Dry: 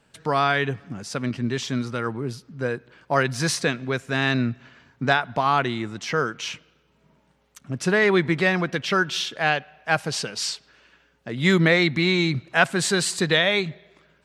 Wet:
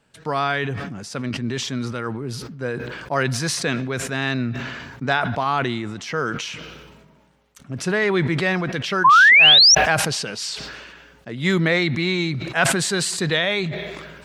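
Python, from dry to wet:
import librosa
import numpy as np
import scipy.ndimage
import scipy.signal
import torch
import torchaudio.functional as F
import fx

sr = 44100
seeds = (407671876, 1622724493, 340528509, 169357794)

y = fx.spec_paint(x, sr, seeds[0], shape='rise', start_s=9.04, length_s=0.71, low_hz=980.0, high_hz=6000.0, level_db=-9.0)
y = fx.sustainer(y, sr, db_per_s=34.0)
y = F.gain(torch.from_numpy(y), -1.5).numpy()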